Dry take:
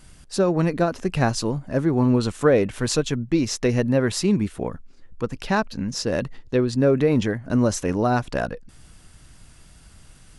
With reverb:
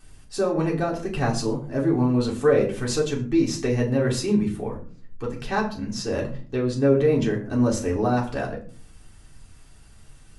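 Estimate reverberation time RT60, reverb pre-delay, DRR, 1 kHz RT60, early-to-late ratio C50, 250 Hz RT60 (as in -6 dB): 0.45 s, 3 ms, -3.0 dB, 0.35 s, 10.5 dB, 0.65 s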